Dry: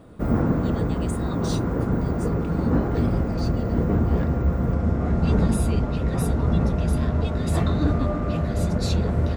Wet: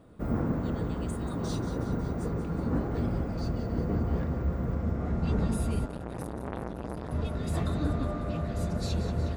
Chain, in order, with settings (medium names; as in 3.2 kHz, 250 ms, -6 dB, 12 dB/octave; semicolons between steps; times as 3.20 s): thinning echo 183 ms, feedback 63%, level -10 dB; 5.86–7.11 s: transformer saturation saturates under 940 Hz; trim -8 dB